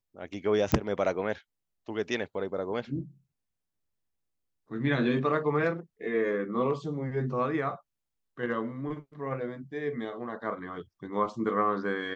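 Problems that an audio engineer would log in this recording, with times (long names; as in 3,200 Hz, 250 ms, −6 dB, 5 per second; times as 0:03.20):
0:00.72: click −11 dBFS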